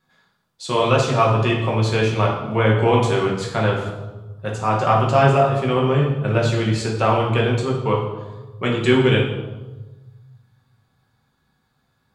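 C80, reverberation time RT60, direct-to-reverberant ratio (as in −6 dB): 6.5 dB, 1.2 s, −3.0 dB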